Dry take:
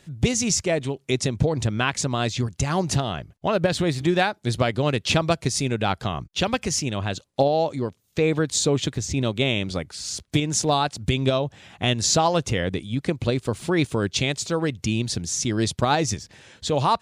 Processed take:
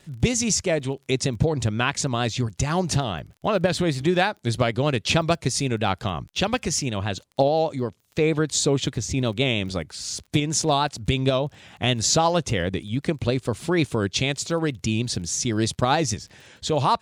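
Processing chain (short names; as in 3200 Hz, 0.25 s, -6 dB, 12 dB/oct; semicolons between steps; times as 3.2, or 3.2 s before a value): vibrato 6.4 Hz 44 cents; crackle 21/s -38 dBFS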